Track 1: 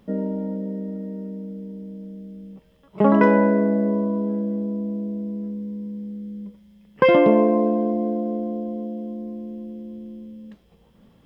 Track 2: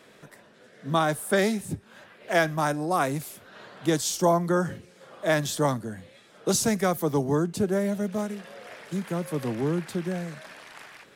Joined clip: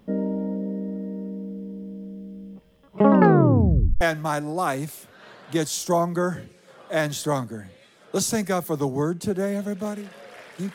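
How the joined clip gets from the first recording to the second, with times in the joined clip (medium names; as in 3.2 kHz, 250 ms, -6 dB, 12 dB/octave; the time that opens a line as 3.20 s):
track 1
3.11 s: tape stop 0.90 s
4.01 s: go over to track 2 from 2.34 s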